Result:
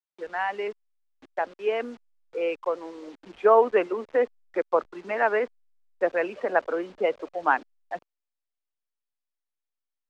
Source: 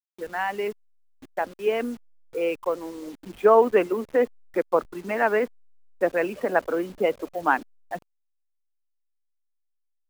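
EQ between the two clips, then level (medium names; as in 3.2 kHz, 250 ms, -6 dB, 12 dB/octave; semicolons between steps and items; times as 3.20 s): three-band isolator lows -12 dB, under 350 Hz, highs -24 dB, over 7.7 kHz; treble shelf 6.2 kHz -11.5 dB; 0.0 dB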